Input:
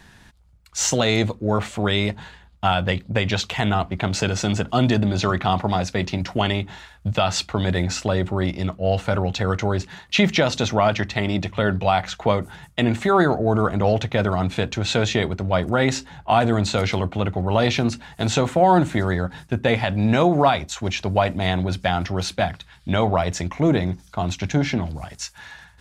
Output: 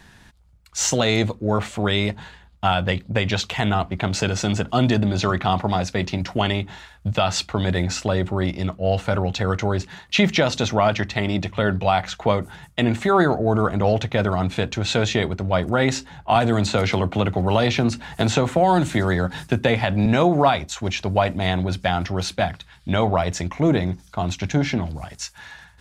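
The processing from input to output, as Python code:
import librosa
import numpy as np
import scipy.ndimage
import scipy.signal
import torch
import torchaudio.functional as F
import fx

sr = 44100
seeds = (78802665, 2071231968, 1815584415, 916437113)

y = fx.band_squash(x, sr, depth_pct=70, at=(16.35, 20.06))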